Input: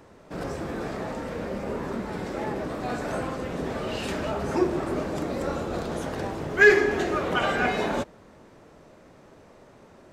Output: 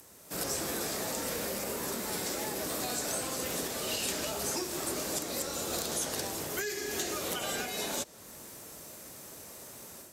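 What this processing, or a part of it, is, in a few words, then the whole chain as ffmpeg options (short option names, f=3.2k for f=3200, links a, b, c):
FM broadcast chain: -filter_complex "[0:a]highpass=44,dynaudnorm=f=250:g=3:m=8dB,acrossover=split=270|820|3000|7400[a][b][c][d][e];[a]acompressor=threshold=-35dB:ratio=4[f];[b]acompressor=threshold=-26dB:ratio=4[g];[c]acompressor=threshold=-35dB:ratio=4[h];[d]acompressor=threshold=-38dB:ratio=4[i];[e]acompressor=threshold=-60dB:ratio=4[j];[f][g][h][i][j]amix=inputs=5:normalize=0,aemphasis=mode=production:type=75fm,alimiter=limit=-18dB:level=0:latency=1:release=430,asoftclip=type=hard:threshold=-20.5dB,lowpass=f=15k:w=0.5412,lowpass=f=15k:w=1.3066,aemphasis=mode=production:type=75fm,volume=-8dB"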